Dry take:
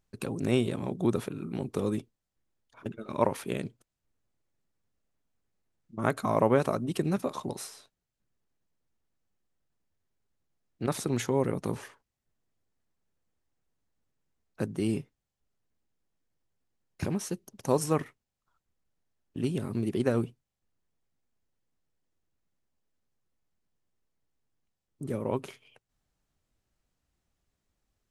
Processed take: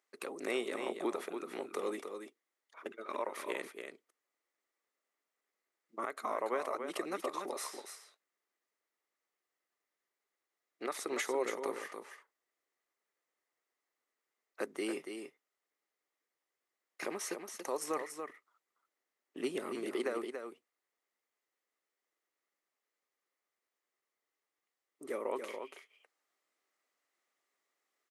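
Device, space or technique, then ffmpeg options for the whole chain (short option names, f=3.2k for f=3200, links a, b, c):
laptop speaker: -filter_complex "[0:a]asettb=1/sr,asplit=3[a][b][c];[a]atrim=end=17.814[d];[b]atrim=start=17.81:end=19.75,asetpts=PTS-STARTPTS,afade=t=in:d=0.004:c=qsin,afade=t=out:st=1.936:d=0.004:c=qsin,lowshelf=f=230:g=8[e];[c]atrim=start=19.746[f];[d][e]acrossfade=d=0.004:c1=hsin:c2=qsin[g];[g][f]acrossfade=d=0.004:c1=qsin:c2=hsin,highpass=f=360:w=0.5412,highpass=f=360:w=1.3066,equalizer=f=1.2k:t=o:w=0.21:g=8,equalizer=f=2k:t=o:w=0.3:g=10,alimiter=limit=-22.5dB:level=0:latency=1:release=307,aecho=1:1:284:0.447,volume=-2dB"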